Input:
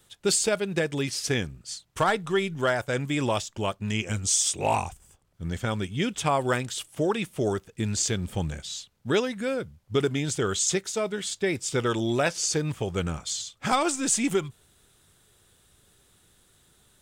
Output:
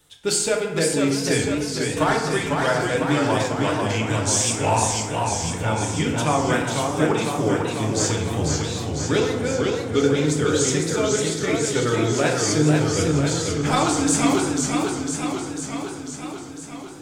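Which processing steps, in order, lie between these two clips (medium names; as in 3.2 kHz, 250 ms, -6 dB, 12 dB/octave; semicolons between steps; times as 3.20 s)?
FDN reverb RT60 1.1 s, low-frequency decay 1×, high-frequency decay 0.5×, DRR -0.5 dB; modulated delay 498 ms, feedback 68%, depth 142 cents, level -4 dB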